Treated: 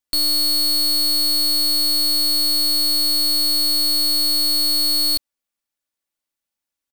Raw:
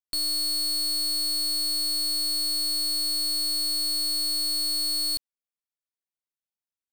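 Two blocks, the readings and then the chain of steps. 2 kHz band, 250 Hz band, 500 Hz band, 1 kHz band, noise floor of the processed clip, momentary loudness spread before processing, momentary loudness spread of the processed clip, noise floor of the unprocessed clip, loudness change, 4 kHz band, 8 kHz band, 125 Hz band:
+9.0 dB, +11.5 dB, +11.0 dB, +10.0 dB, under -85 dBFS, 0 LU, 0 LU, under -85 dBFS, +8.0 dB, +8.0 dB, +5.5 dB, n/a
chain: comb 3.5 ms, depth 39%; gain +8.5 dB

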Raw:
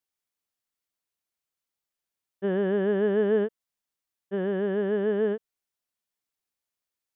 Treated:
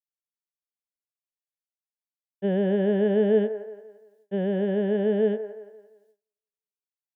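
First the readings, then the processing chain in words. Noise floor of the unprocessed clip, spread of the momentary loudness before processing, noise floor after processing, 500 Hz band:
under -85 dBFS, 9 LU, under -85 dBFS, +1.5 dB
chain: fixed phaser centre 320 Hz, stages 6; band-limited delay 0.172 s, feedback 41%, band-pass 880 Hz, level -9 dB; gate with hold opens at -59 dBFS; gain +4.5 dB

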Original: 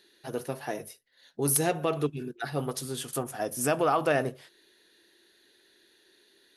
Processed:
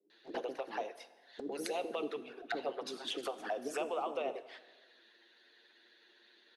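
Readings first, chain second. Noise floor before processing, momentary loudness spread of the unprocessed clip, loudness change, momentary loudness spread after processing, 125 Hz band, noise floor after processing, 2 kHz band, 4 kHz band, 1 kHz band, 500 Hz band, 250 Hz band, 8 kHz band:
-64 dBFS, 12 LU, -10.0 dB, 10 LU, under -30 dB, -66 dBFS, -9.0 dB, -3.0 dB, -9.0 dB, -8.5 dB, -11.5 dB, -20.0 dB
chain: octaver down 1 oct, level -2 dB; HPF 220 Hz 24 dB/oct; high shelf 6800 Hz -10 dB; harmonic-percussive split harmonic -10 dB; three-band isolator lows -19 dB, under 280 Hz, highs -20 dB, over 5200 Hz; compressor 5:1, threshold -39 dBFS, peak gain reduction 14.5 dB; bands offset in time lows, highs 0.1 s, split 430 Hz; envelope flanger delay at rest 10.2 ms, full sweep at -41 dBFS; plate-style reverb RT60 1.4 s, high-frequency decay 1×, DRR 13.5 dB; gain +8.5 dB

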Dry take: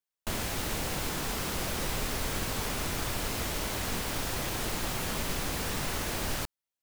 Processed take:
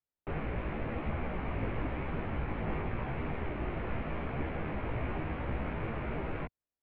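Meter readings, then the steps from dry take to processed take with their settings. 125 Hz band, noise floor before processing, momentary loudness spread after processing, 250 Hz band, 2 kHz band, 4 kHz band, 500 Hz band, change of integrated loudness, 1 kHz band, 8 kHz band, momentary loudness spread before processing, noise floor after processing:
+1.0 dB, under -85 dBFS, 1 LU, 0.0 dB, -6.0 dB, -20.5 dB, -1.0 dB, -5.0 dB, -3.5 dB, under -40 dB, 1 LU, under -85 dBFS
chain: rattling part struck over -45 dBFS, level -29 dBFS; tilt shelf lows +8 dB, about 1300 Hz; mistuned SSB -250 Hz 160–2900 Hz; chorus voices 2, 0.91 Hz, delay 16 ms, depth 3.6 ms

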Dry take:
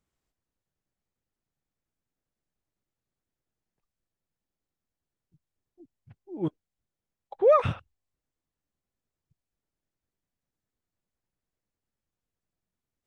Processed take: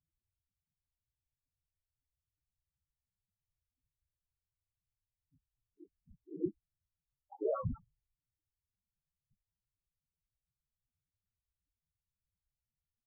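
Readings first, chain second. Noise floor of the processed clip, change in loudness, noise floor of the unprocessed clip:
under -85 dBFS, -14.0 dB, under -85 dBFS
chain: chorus 0.75 Hz, delay 16 ms, depth 6.3 ms; dynamic EQ 610 Hz, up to -4 dB, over -32 dBFS, Q 1.5; limiter -22.5 dBFS, peak gain reduction 8 dB; high shelf 3000 Hz -9.5 dB; whisperiser; loudest bins only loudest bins 4

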